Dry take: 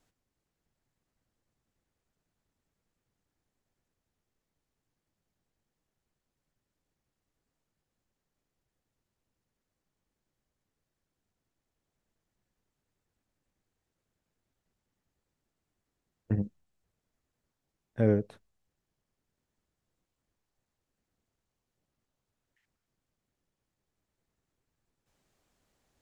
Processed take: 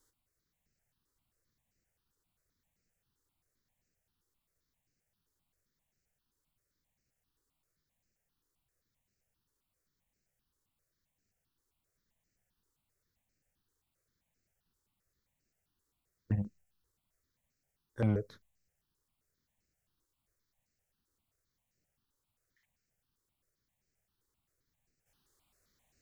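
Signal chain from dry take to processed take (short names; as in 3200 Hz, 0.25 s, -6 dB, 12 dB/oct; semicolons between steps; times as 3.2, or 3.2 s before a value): high shelf 3200 Hz +9 dB; step phaser 7.6 Hz 690–3400 Hz; gain -1 dB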